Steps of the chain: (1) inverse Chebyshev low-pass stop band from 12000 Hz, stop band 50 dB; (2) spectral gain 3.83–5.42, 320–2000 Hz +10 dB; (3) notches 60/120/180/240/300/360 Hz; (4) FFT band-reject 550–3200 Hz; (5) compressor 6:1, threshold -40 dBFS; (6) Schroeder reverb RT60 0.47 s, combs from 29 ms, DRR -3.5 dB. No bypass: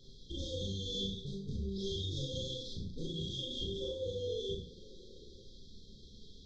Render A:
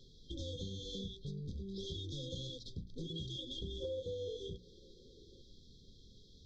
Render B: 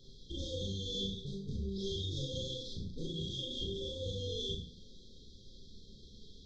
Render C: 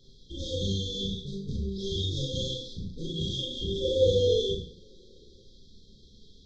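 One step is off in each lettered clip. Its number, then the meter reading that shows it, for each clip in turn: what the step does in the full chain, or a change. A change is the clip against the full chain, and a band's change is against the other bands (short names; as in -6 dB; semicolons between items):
6, 4 kHz band -1.5 dB; 2, 500 Hz band -2.5 dB; 5, mean gain reduction 5.0 dB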